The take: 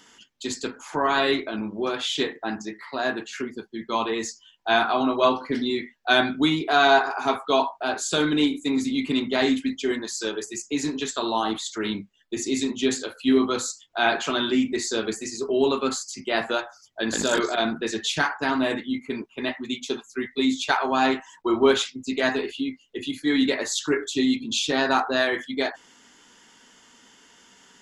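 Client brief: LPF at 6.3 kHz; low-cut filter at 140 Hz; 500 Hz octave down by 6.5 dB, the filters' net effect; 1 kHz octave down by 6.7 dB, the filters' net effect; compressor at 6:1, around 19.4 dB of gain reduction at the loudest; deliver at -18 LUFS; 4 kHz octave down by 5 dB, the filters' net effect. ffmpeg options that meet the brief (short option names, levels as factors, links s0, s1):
-af "highpass=140,lowpass=6300,equalizer=f=500:t=o:g=-7.5,equalizer=f=1000:t=o:g=-6,equalizer=f=4000:t=o:g=-5,acompressor=threshold=0.00891:ratio=6,volume=18.8"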